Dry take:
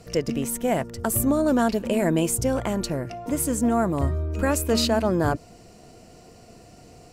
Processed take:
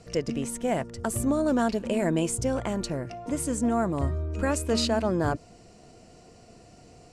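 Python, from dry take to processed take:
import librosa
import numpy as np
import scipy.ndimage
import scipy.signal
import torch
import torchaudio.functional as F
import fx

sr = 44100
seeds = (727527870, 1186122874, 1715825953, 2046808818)

y = scipy.signal.sosfilt(scipy.signal.butter(4, 9800.0, 'lowpass', fs=sr, output='sos'), x)
y = y * 10.0 ** (-3.5 / 20.0)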